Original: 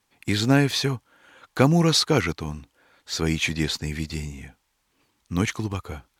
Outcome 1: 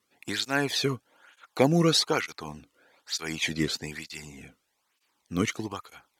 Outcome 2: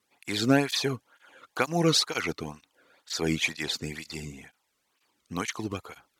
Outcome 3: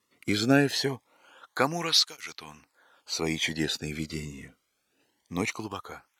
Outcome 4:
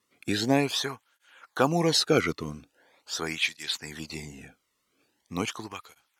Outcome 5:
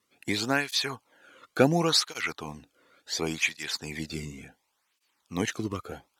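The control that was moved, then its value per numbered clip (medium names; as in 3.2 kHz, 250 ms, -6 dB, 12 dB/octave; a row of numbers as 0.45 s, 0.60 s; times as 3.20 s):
cancelling through-zero flanger, nulls at: 1.1 Hz, 2.1 Hz, 0.23 Hz, 0.42 Hz, 0.7 Hz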